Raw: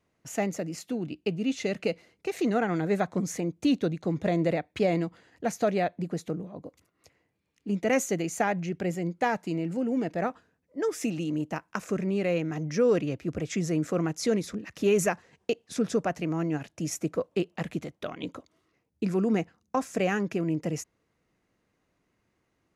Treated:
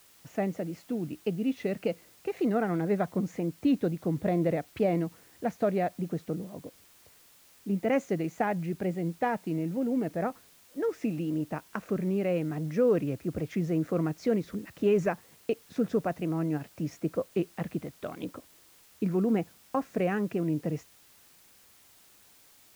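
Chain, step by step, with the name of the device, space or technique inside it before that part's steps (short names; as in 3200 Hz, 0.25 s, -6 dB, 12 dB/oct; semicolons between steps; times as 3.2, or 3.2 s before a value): cassette deck with a dirty head (tape spacing loss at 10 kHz 28 dB; wow and flutter; white noise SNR 28 dB)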